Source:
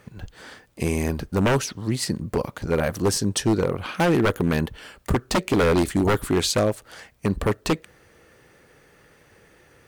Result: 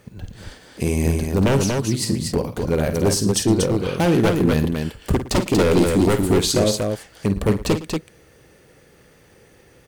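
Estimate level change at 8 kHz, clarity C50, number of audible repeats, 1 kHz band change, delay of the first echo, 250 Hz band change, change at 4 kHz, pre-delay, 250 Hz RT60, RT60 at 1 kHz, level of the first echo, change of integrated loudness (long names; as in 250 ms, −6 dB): +4.5 dB, no reverb audible, 3, 0.0 dB, 51 ms, +4.5 dB, +3.5 dB, no reverb audible, no reverb audible, no reverb audible, −10.0 dB, +3.5 dB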